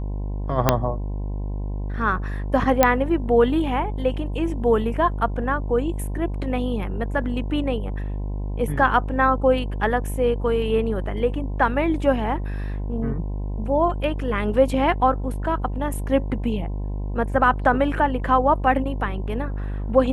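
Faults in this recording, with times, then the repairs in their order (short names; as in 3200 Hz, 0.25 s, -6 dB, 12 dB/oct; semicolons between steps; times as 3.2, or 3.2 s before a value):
buzz 50 Hz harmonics 21 -27 dBFS
0.69 pop 0 dBFS
2.83 pop -1 dBFS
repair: de-click; de-hum 50 Hz, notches 21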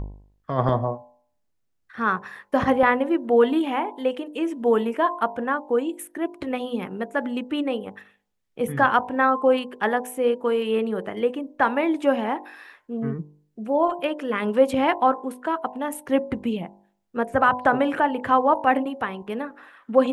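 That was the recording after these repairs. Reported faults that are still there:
0.69 pop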